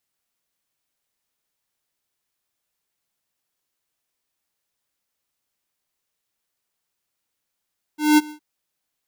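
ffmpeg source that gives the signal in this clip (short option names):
-f lavfi -i "aevalsrc='0.251*(2*lt(mod(302*t,1),0.5)-1)':d=0.414:s=44100,afade=t=in:d=0.198,afade=t=out:st=0.198:d=0.027:silence=0.0668,afade=t=out:st=0.32:d=0.094"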